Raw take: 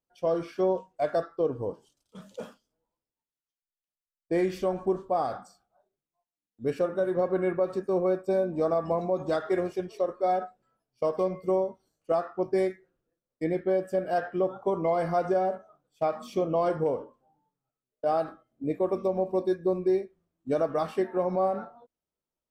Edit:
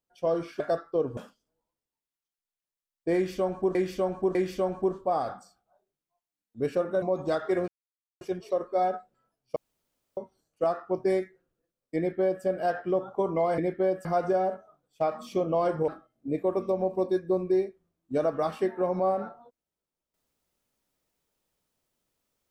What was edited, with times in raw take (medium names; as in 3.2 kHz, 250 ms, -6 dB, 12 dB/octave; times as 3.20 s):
0.60–1.05 s: delete
1.62–2.41 s: delete
4.39–4.99 s: loop, 3 plays
7.06–9.03 s: delete
9.69 s: insert silence 0.53 s
11.04–11.65 s: room tone
13.45–13.92 s: copy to 15.06 s
16.89–18.24 s: delete